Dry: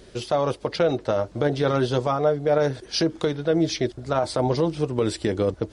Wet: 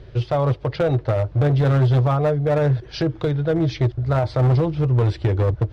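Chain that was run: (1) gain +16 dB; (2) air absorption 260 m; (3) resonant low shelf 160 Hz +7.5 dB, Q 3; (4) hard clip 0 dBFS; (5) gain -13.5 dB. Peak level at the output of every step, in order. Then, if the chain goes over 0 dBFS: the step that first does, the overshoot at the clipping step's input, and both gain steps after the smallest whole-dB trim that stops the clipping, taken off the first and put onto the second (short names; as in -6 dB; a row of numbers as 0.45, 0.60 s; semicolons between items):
+6.5, +5.5, +8.5, 0.0, -13.5 dBFS; step 1, 8.5 dB; step 1 +7 dB, step 5 -4.5 dB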